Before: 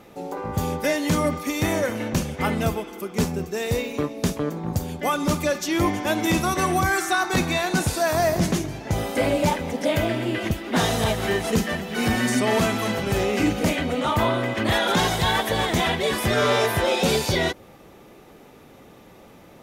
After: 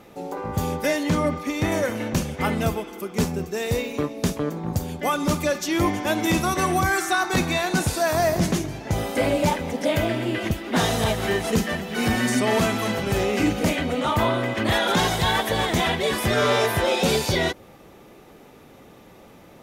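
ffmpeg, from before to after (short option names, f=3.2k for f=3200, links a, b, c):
-filter_complex "[0:a]asettb=1/sr,asplit=3[a][b][c];[a]atrim=end=1.034[d];[b]atrim=start=1.03:end=1.72,asetpts=PTS-STARTPTS,afade=t=in:d=0.004:c=qsin,afade=t=out:st=0.686:d=0.004:c=qsin,lowpass=f=3.7k:p=1[e];[c]atrim=start=1.716[f];[d][e]acrossfade=d=0.004:c1=hsin:c2=qsin[g];[g][f]acrossfade=d=0.004:c1=qsin:c2=hsin"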